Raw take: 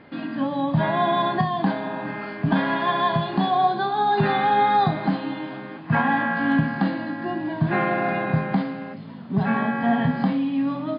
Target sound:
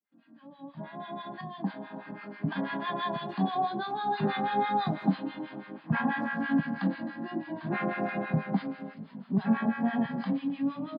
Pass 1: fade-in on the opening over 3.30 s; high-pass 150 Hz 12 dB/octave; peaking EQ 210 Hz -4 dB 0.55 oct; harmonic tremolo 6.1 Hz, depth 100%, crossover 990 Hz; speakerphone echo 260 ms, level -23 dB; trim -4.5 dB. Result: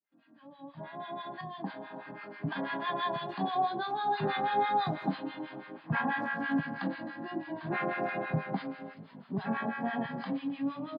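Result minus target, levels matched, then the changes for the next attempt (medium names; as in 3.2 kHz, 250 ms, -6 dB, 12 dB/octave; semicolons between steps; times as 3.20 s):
250 Hz band -3.0 dB
change: peaking EQ 210 Hz +6.5 dB 0.55 oct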